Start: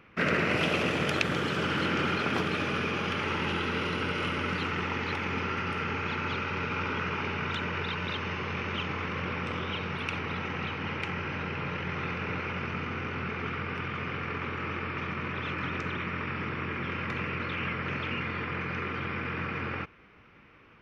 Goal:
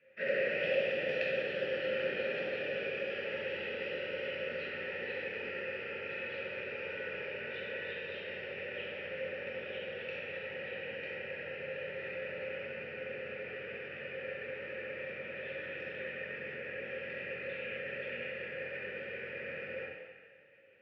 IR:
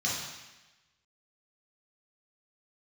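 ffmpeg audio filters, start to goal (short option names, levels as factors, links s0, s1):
-filter_complex "[0:a]crystalizer=i=1.5:c=0,asplit=3[s0][s1][s2];[s0]bandpass=f=530:t=q:w=8,volume=1[s3];[s1]bandpass=f=1840:t=q:w=8,volume=0.501[s4];[s2]bandpass=f=2480:t=q:w=8,volume=0.355[s5];[s3][s4][s5]amix=inputs=3:normalize=0,highshelf=f=2500:g=-8.5[s6];[1:a]atrim=start_sample=2205,asetrate=33516,aresample=44100[s7];[s6][s7]afir=irnorm=-1:irlink=0,volume=0.596"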